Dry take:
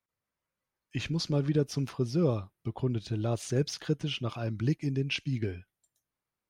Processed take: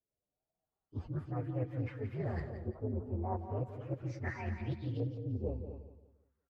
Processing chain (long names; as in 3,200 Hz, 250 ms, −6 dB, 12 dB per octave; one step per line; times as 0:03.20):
partials spread apart or drawn together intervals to 128%
reversed playback
downward compressor, threshold −36 dBFS, peak gain reduction 12.5 dB
reversed playback
single-tap delay 244 ms −10.5 dB
auto-filter low-pass saw up 0.4 Hz 460–3,500 Hz
on a send: repeating echo 173 ms, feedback 34%, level −10.5 dB
on the sum: highs frequency-modulated by the lows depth 0.21 ms
level +1 dB